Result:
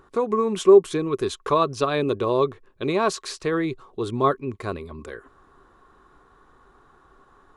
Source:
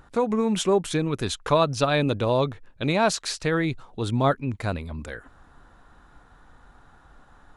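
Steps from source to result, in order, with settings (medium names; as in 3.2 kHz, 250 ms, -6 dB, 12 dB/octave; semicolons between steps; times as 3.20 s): bass shelf 150 Hz -4 dB; small resonant body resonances 390/1100 Hz, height 15 dB, ringing for 45 ms; trim -4 dB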